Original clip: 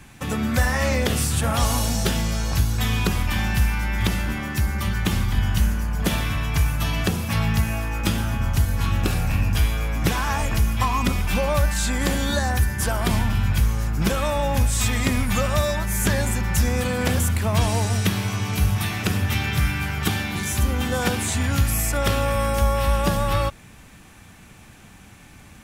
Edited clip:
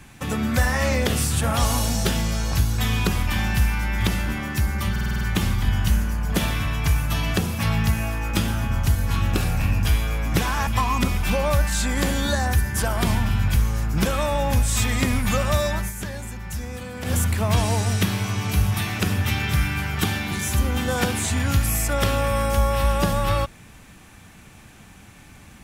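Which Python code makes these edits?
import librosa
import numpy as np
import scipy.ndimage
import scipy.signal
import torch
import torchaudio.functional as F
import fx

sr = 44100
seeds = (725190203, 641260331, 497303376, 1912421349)

y = fx.edit(x, sr, fx.stutter(start_s=4.91, slice_s=0.05, count=7),
    fx.cut(start_s=10.37, length_s=0.34),
    fx.fade_down_up(start_s=15.82, length_s=1.4, db=-10.5, fade_s=0.14, curve='qsin'), tone=tone)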